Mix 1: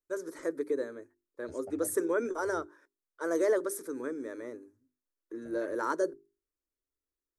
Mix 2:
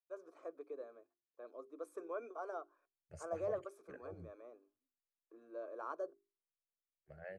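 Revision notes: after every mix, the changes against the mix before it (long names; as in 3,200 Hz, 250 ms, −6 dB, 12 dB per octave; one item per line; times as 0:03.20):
first voice: add formant filter a
second voice: entry +1.65 s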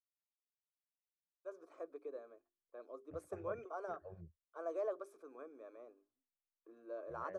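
first voice: entry +1.35 s
second voice: add head-to-tape spacing loss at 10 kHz 33 dB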